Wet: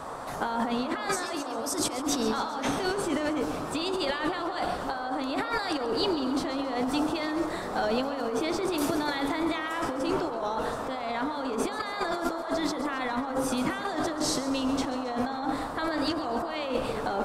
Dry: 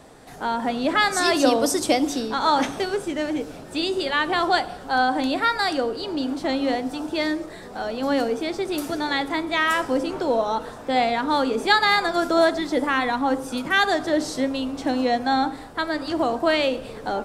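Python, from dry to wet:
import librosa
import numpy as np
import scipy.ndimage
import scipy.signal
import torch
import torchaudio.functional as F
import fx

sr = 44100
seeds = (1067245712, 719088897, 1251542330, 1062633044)

p1 = fx.over_compress(x, sr, threshold_db=-29.0, ratio=-1.0)
p2 = fx.dmg_noise_band(p1, sr, seeds[0], low_hz=470.0, high_hz=1300.0, level_db=-37.0)
p3 = p2 + fx.echo_feedback(p2, sr, ms=135, feedback_pct=59, wet_db=-14, dry=0)
y = p3 * librosa.db_to_amplitude(-2.0)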